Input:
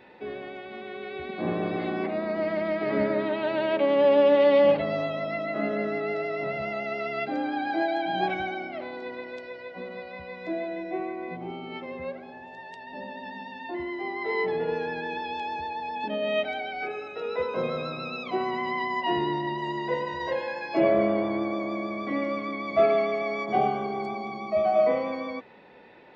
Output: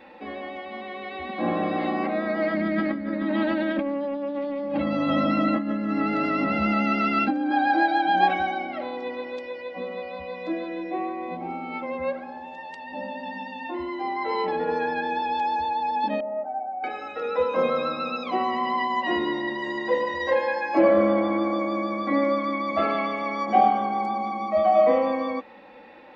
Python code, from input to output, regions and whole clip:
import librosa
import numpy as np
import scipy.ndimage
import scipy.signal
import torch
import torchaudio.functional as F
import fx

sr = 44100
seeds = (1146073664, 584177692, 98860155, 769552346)

y = fx.chain(x, sr, fx.low_shelf_res(hz=360.0, db=7.5, q=1.5),
    fx.over_compress(threshold_db=-29.0, ratio=-1.0), at=(2.54, 7.51))
y = fx.chain(y, sr, fx.ladder_lowpass(hz=960.0, resonance_pct=60),
    fx.low_shelf(hz=140.0, db=-5.0), at=(16.2, 16.84))
y = fx.peak_eq(y, sr, hz=1100.0, db=4.5, octaves=1.8)
y = y + 0.88 * np.pad(y, (int(3.7 * sr / 1000.0), 0))[:len(y)]